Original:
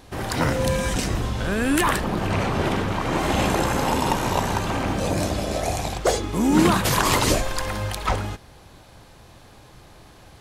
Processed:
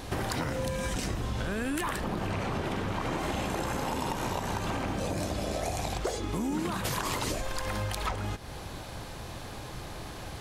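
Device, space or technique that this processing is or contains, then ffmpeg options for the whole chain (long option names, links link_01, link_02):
serial compression, leveller first: -af "acompressor=threshold=-27dB:ratio=2,acompressor=threshold=-37dB:ratio=5,volume=7dB"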